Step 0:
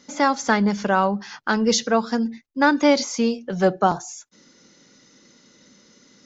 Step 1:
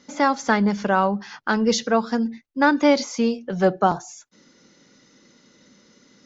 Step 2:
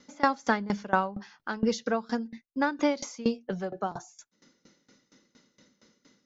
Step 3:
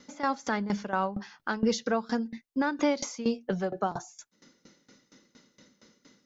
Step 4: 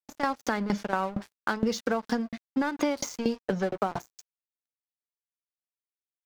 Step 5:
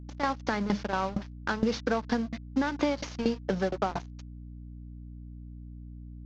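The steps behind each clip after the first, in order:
high-shelf EQ 6,100 Hz −8 dB
tremolo with a ramp in dB decaying 4.3 Hz, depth 21 dB; level −1.5 dB
brickwall limiter −19.5 dBFS, peak gain reduction 11 dB; level +3 dB
dead-zone distortion −43 dBFS; downward compressor, threshold −30 dBFS, peak gain reduction 9 dB; level +7 dB
variable-slope delta modulation 32 kbit/s; mains hum 60 Hz, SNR 11 dB

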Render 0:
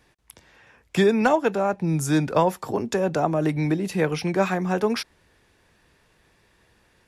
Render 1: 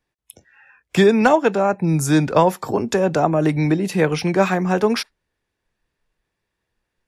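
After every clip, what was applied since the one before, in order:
noise reduction from a noise print of the clip's start 22 dB
level +5 dB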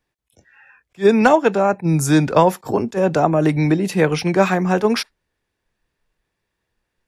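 level that may rise only so fast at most 430 dB per second
level +1.5 dB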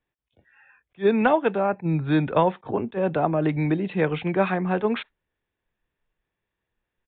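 downsampling to 8,000 Hz
level −6.5 dB

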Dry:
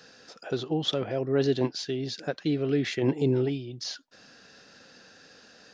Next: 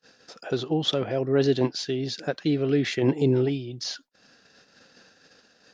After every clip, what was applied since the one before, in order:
noise gate −52 dBFS, range −31 dB
level +3 dB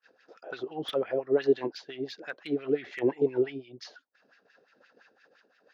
auto-filter band-pass sine 5.8 Hz 370–2,300 Hz
slew-rate limiting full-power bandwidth 73 Hz
level +2 dB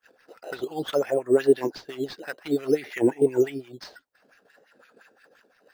in parallel at −5.5 dB: sample-and-hold swept by an LFO 9×, swing 100% 0.56 Hz
on the sum: wow of a warped record 33 1/3 rpm, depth 100 cents
level +1.5 dB

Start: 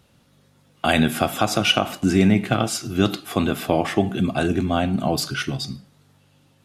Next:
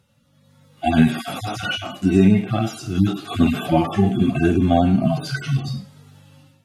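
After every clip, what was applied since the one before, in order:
harmonic-percussive split with one part muted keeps harmonic
automatic gain control gain up to 13.5 dB
level −2 dB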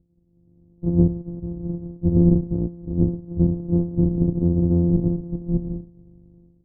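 samples sorted by size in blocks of 256 samples
transistor ladder low-pass 400 Hz, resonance 30%
low-shelf EQ 64 Hz +10 dB
level +3 dB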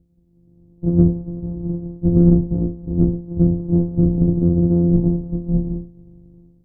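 peak hold with a decay on every bin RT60 0.37 s
flanger 0.37 Hz, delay 4 ms, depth 3.6 ms, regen −78%
in parallel at −11 dB: soft clipping −18 dBFS, distortion −13 dB
on the sum: level +5.5 dB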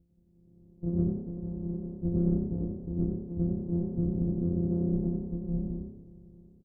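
downward compressor 1.5 to 1, threshold −30 dBFS, peak gain reduction 8 dB
echo with shifted repeats 90 ms, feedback 32%, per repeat +33 Hz, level −7 dB
level −7.5 dB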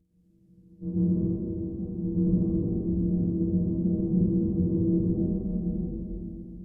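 partials spread apart or drawn together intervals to 89%
convolution reverb RT60 2.4 s, pre-delay 114 ms, DRR −5 dB

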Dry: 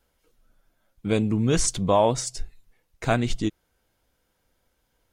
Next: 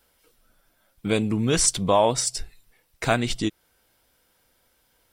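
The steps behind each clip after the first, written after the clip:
spectral tilt +1.5 dB per octave
notch filter 6,600 Hz, Q 8.6
in parallel at −1 dB: downward compressor, threshold −31 dBFS, peak gain reduction 14.5 dB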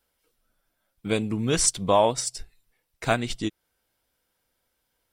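expander for the loud parts 1.5 to 1, over −36 dBFS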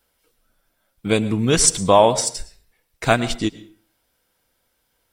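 convolution reverb RT60 0.45 s, pre-delay 103 ms, DRR 16 dB
level +6.5 dB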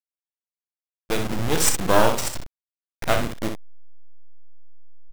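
hold until the input has moved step −18 dBFS
half-wave rectification
on a send: ambience of single reflections 33 ms −12.5 dB, 63 ms −7 dB
on the sum: level −1 dB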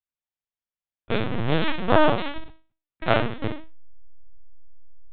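peak hold with a decay on every bin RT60 0.39 s
linear-prediction vocoder at 8 kHz pitch kept
level −1.5 dB

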